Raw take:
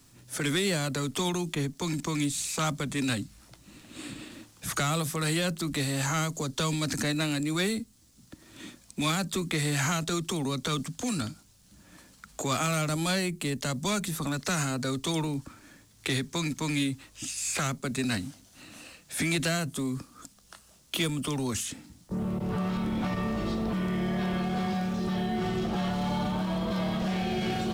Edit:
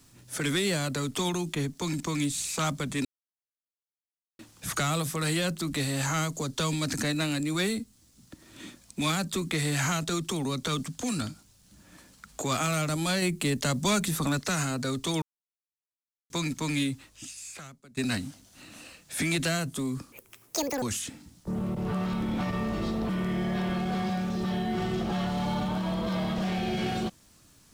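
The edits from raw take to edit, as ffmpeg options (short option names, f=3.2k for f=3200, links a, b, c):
-filter_complex "[0:a]asplit=10[a][b][c][d][e][f][g][h][i][j];[a]atrim=end=3.05,asetpts=PTS-STARTPTS,afade=t=out:st=3.046:d=0.004:c=hsin[k];[b]atrim=start=3.05:end=4.39,asetpts=PTS-STARTPTS,volume=0[l];[c]atrim=start=4.39:end=13.222,asetpts=PTS-STARTPTS,afade=t=in:d=0.004:c=hsin[m];[d]atrim=start=13.218:end=14.392,asetpts=PTS-STARTPTS,volume=3.5dB[n];[e]atrim=start=14.388:end=15.22,asetpts=PTS-STARTPTS,afade=t=out:st=0.828:d=0.004:c=hsin[o];[f]atrim=start=15.22:end=16.3,asetpts=PTS-STARTPTS,volume=0[p];[g]atrim=start=16.3:end=17.97,asetpts=PTS-STARTPTS,afade=t=in:d=0.004:c=hsin,afade=t=out:st=0.61:d=1.06:c=qua:silence=0.0794328[q];[h]atrim=start=17.97:end=20.124,asetpts=PTS-STARTPTS,afade=t=in:d=0.004:c=hsin:silence=0.0794328[r];[i]atrim=start=20.12:end=21.46,asetpts=PTS-STARTPTS,asetrate=84231,aresample=44100,atrim=end_sample=30939,asetpts=PTS-STARTPTS[s];[j]atrim=start=21.456[t];[k][l][m]concat=n=3:v=0:a=1[u];[u][n]acrossfade=d=0.004:c1=hsin:c2=hsin[v];[o][p][q][r]concat=n=4:v=0:a=1[w];[v][w]acrossfade=d=0.004:c1=hsin:c2=hsin[x];[x][s]acrossfade=d=0.004:c1=hsin:c2=hsin[y];[y][t]acrossfade=d=0.004:c1=hsin:c2=hsin"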